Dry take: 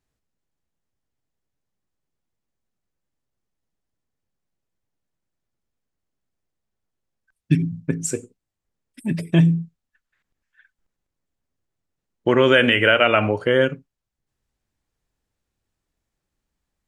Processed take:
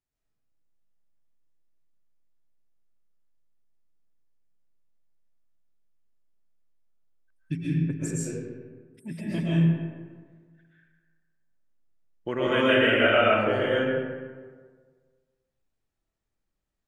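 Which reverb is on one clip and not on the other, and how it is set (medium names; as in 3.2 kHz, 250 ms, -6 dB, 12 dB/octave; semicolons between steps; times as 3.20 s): algorithmic reverb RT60 1.6 s, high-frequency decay 0.5×, pre-delay 90 ms, DRR -8 dB; trim -13.5 dB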